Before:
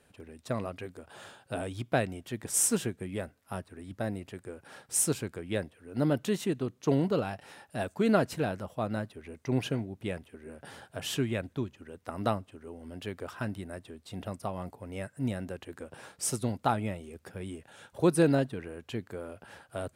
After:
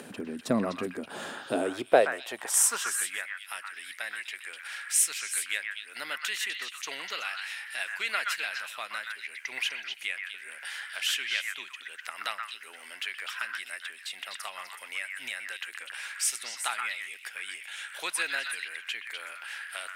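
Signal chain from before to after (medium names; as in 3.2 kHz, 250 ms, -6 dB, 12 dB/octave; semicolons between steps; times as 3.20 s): high-pass sweep 220 Hz -> 2.1 kHz, 1.26–3.33 s; in parallel at -2.5 dB: upward compressor, threshold -27 dBFS; on the sum: repeats whose band climbs or falls 125 ms, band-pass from 1.5 kHz, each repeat 1.4 oct, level -1 dB; trim -1.5 dB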